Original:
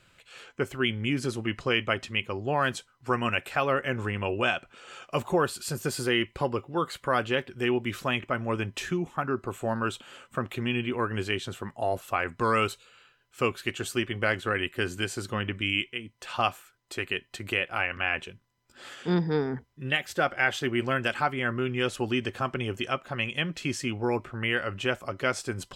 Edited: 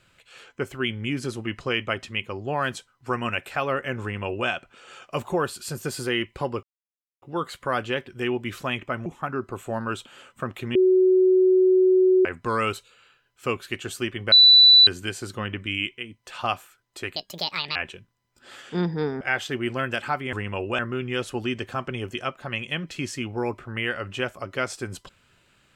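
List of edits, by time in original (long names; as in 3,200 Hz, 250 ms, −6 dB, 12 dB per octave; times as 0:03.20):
0:04.02–0:04.48: duplicate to 0:21.45
0:06.63: splice in silence 0.59 s
0:08.47–0:09.01: remove
0:10.70–0:12.20: beep over 372 Hz −14 dBFS
0:14.27–0:14.82: beep over 3,970 Hz −9 dBFS
0:17.11–0:18.09: play speed 164%
0:19.54–0:20.33: remove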